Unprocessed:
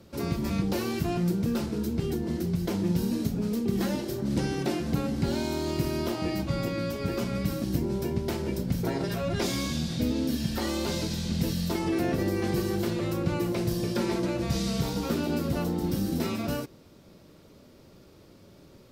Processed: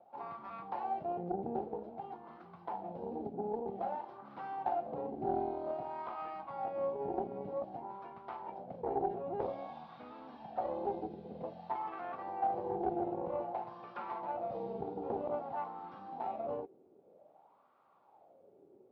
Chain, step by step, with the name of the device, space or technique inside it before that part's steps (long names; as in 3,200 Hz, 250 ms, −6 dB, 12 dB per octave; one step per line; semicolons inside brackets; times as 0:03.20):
wah-wah guitar rig (LFO wah 0.52 Hz 380–1,200 Hz, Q 5.3; tube saturation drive 31 dB, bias 0.75; loudspeaker in its box 77–3,800 Hz, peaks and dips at 340 Hz −3 dB, 790 Hz +8 dB, 1,800 Hz −3 dB)
parametric band 750 Hz +5.5 dB 0.4 octaves
level +5 dB